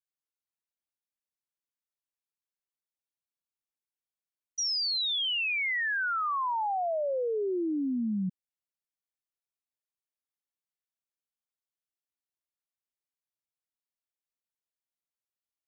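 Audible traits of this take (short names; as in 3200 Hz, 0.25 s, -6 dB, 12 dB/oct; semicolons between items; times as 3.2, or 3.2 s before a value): noise floor -95 dBFS; spectral tilt -2.5 dB/oct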